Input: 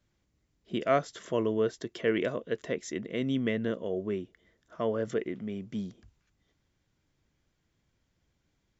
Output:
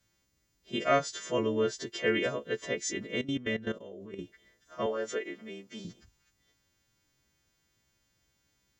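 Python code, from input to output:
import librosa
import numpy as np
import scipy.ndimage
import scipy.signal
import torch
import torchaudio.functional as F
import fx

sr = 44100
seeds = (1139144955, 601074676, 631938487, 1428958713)

y = fx.freq_snap(x, sr, grid_st=2)
y = fx.level_steps(y, sr, step_db=15, at=(3.21, 4.19))
y = fx.highpass(y, sr, hz=370.0, slope=12, at=(4.86, 5.85))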